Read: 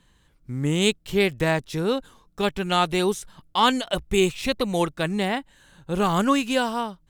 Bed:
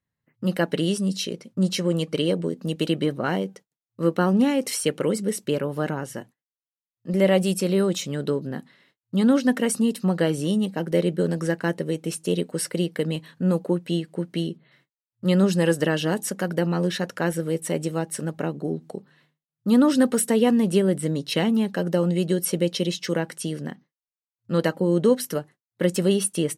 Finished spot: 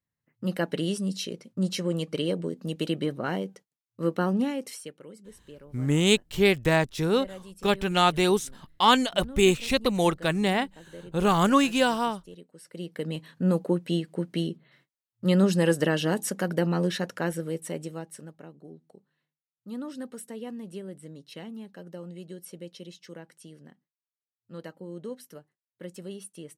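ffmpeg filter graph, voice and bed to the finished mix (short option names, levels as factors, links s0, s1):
-filter_complex "[0:a]adelay=5250,volume=1[s0];[1:a]volume=6.31,afade=t=out:st=4.27:d=0.68:silence=0.125893,afade=t=in:st=12.64:d=0.77:silence=0.0891251,afade=t=out:st=16.77:d=1.62:silence=0.141254[s1];[s0][s1]amix=inputs=2:normalize=0"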